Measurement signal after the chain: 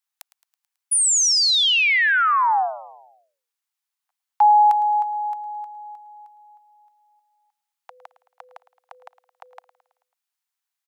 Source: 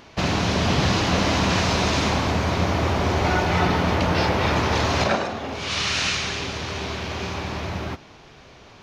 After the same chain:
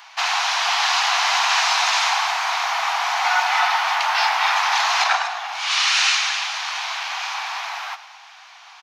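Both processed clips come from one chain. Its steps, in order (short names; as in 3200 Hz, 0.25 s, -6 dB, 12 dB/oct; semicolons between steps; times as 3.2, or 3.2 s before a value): steep high-pass 740 Hz 72 dB/oct; on a send: feedback echo 0.109 s, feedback 55%, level -17 dB; on the sum: gain +6 dB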